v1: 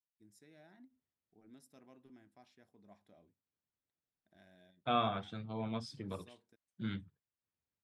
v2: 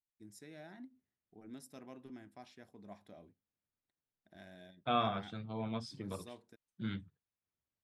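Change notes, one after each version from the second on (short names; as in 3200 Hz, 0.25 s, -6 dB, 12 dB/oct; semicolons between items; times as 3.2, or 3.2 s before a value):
first voice +9.0 dB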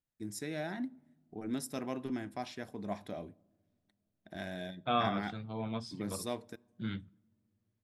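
first voice +11.0 dB; reverb: on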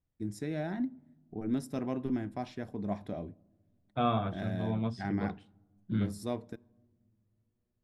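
second voice: entry -0.90 s; master: add tilt -2.5 dB/oct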